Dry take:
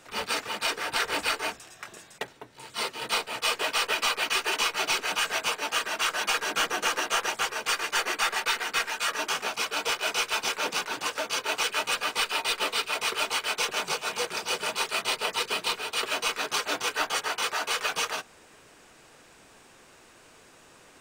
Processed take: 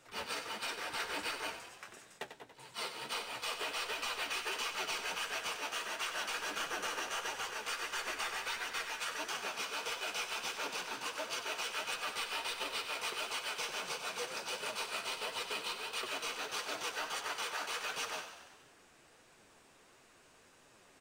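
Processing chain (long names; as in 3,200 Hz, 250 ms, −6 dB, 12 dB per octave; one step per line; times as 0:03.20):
brickwall limiter −18.5 dBFS, peak gain reduction 5 dB
flanger 1.5 Hz, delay 6.8 ms, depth 8.4 ms, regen +41%
echo with shifted repeats 94 ms, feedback 60%, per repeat +34 Hz, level −9.5 dB
level −5.5 dB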